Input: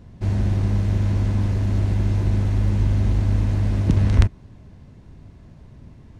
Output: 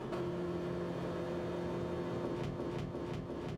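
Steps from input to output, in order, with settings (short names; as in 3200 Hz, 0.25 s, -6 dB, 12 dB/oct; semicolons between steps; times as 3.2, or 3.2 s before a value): speed mistake 45 rpm record played at 78 rpm; HPF 980 Hz 6 dB/oct; feedback echo 0.35 s, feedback 49%, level -4 dB; shoebox room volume 120 m³, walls furnished, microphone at 3 m; compressor 6:1, threshold -50 dBFS, peak gain reduction 29 dB; LPF 1400 Hz 6 dB/oct; gain +11.5 dB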